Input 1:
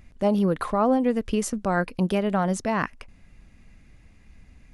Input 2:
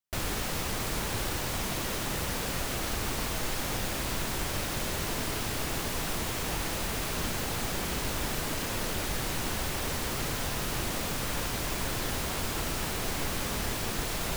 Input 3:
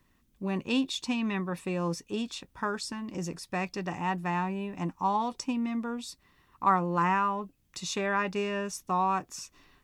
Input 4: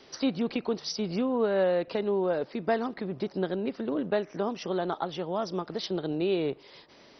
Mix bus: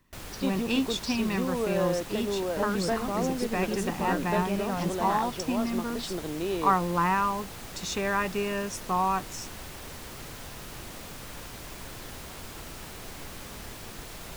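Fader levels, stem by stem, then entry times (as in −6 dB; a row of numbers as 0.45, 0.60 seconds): −9.0, −9.5, +1.0, −3.5 decibels; 2.35, 0.00, 0.00, 0.20 seconds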